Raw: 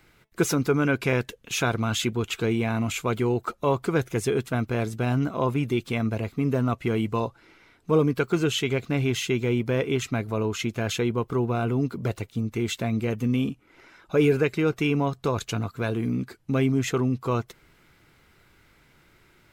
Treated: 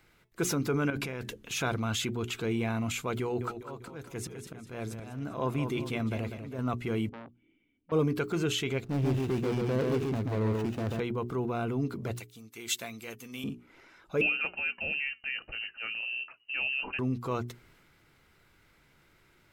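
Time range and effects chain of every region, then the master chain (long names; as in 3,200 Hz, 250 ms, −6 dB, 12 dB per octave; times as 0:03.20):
0:00.90–0:01.58: hum removal 70.54 Hz, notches 4 + compressor whose output falls as the input rises −30 dBFS
0:03.21–0:06.59: volume swells 442 ms + feedback echo with a swinging delay time 198 ms, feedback 42%, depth 63 cents, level −10.5 dB
0:07.09–0:07.92: formant resonators in series i + saturating transformer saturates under 1,500 Hz
0:08.84–0:11.00: running median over 41 samples + leveller curve on the samples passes 1 + single-tap delay 137 ms −3.5 dB
0:12.17–0:13.44: spectral tilt +4 dB per octave + expander for the loud parts, over −48 dBFS
0:14.21–0:16.99: flanger 1.8 Hz, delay 3.1 ms, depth 2.6 ms, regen +86% + voice inversion scrambler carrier 2,900 Hz
whole clip: mains-hum notches 60/120/180/240/300/360/420 Hz; transient designer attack −3 dB, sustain +3 dB; level −5 dB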